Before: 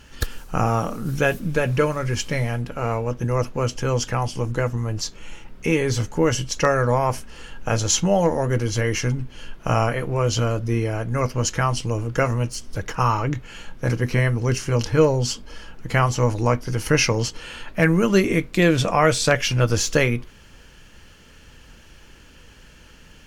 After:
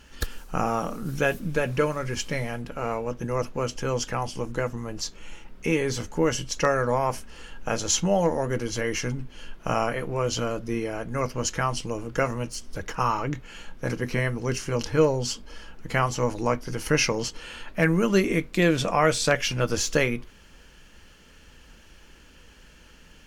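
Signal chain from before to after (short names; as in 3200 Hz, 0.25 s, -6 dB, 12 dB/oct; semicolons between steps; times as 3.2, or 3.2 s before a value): bell 110 Hz -13 dB 0.31 oct; gain -3.5 dB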